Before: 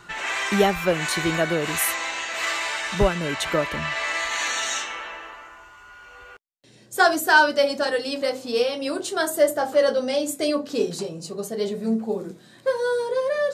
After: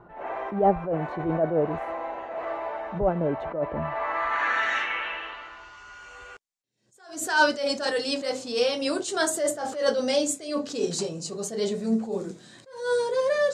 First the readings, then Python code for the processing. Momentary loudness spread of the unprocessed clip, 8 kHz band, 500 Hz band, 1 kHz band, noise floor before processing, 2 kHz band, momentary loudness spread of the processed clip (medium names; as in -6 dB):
11 LU, -3.5 dB, -3.0 dB, -3.0 dB, -50 dBFS, -5.5 dB, 16 LU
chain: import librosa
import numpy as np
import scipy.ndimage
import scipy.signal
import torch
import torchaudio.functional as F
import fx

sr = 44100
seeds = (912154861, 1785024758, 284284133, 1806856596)

y = fx.filter_sweep_lowpass(x, sr, from_hz=690.0, to_hz=7400.0, start_s=3.71, end_s=6.1, q=2.0)
y = fx.attack_slew(y, sr, db_per_s=110.0)